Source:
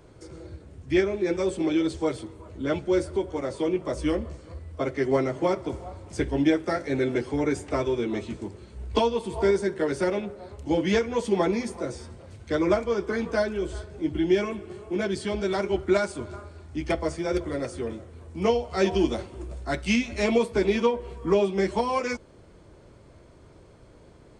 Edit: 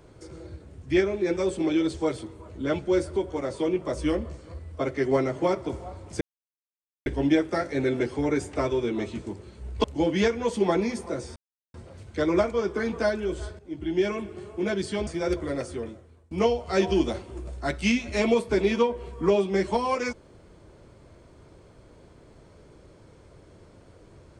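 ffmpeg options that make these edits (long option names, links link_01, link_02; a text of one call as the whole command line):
ffmpeg -i in.wav -filter_complex "[0:a]asplit=7[link_01][link_02][link_03][link_04][link_05][link_06][link_07];[link_01]atrim=end=6.21,asetpts=PTS-STARTPTS,afade=type=out:start_time=6.206:duration=0.004:curve=hsin,apad=pad_dur=0.85[link_08];[link_02]atrim=start=6.21:end=8.992,asetpts=PTS-STARTPTS,afade=type=in:duration=0.004:curve=hsin[link_09];[link_03]atrim=start=10.548:end=12.07,asetpts=PTS-STARTPTS,afade=type=out:start_time=1.518:duration=0.004:curve=hsin,apad=pad_dur=0.38[link_10];[link_04]atrim=start=12.07:end=13.92,asetpts=PTS-STARTPTS,afade=type=in:duration=0.004:curve=hsin,afade=type=out:start_time=1.846:duration=0.004:curve=hsin:silence=0.211349[link_11];[link_05]atrim=start=13.92:end=15.402,asetpts=PTS-STARTPTS,afade=type=in:duration=0.59:silence=0.211349[link_12];[link_06]atrim=start=17.108:end=18.35,asetpts=PTS-STARTPTS,afade=type=out:start_time=0.592:duration=0.65:silence=0.0794328[link_13];[link_07]atrim=start=18.35,asetpts=PTS-STARTPTS,afade=type=in:duration=0.004:curve=hsin:silence=0.0794328[link_14];[link_08][link_09]concat=n=2:v=0:a=1[link_15];[link_10][link_11][link_12]concat=n=3:v=0:a=1[link_16];[link_15][link_16]acrossfade=duration=0.004:curve1=hsin:curve2=hsin[link_17];[link_13][link_14]concat=n=2:v=0:a=1[link_18];[link_17][link_18]acrossfade=duration=0.004:curve1=hsin:curve2=hsin" out.wav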